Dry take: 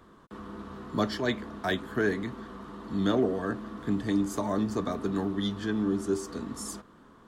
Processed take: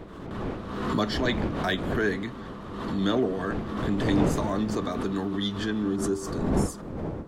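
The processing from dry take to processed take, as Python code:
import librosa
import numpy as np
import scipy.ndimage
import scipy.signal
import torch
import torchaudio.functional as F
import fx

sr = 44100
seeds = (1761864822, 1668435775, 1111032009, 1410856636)

y = fx.dmg_wind(x, sr, seeds[0], corner_hz=350.0, level_db=-34.0)
y = fx.peak_eq(y, sr, hz=3000.0, db=fx.steps((0.0, 4.5), (5.96, -3.0)), octaves=1.7)
y = fx.pre_swell(y, sr, db_per_s=39.0)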